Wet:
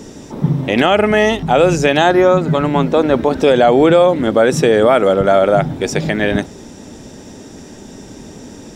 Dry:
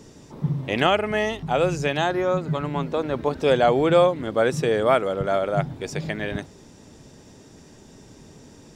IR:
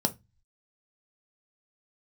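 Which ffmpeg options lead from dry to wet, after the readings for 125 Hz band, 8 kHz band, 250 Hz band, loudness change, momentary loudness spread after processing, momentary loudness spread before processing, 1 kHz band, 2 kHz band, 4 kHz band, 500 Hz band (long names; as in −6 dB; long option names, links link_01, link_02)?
+8.0 dB, +11.5 dB, +11.5 dB, +9.5 dB, 8 LU, 10 LU, +8.5 dB, +9.0 dB, +8.0 dB, +9.5 dB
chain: -filter_complex "[0:a]asplit=2[link_01][link_02];[1:a]atrim=start_sample=2205[link_03];[link_02][link_03]afir=irnorm=-1:irlink=0,volume=-21.5dB[link_04];[link_01][link_04]amix=inputs=2:normalize=0,alimiter=level_in=12dB:limit=-1dB:release=50:level=0:latency=1,volume=-1dB"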